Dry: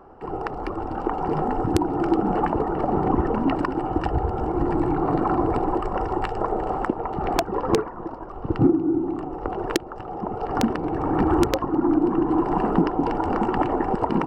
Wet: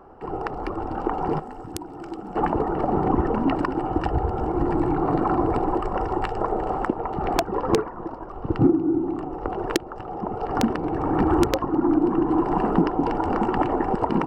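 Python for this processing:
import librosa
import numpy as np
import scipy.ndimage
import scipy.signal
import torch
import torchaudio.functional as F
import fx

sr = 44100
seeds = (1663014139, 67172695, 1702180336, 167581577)

y = fx.pre_emphasis(x, sr, coefficient=0.8, at=(1.38, 2.35), fade=0.02)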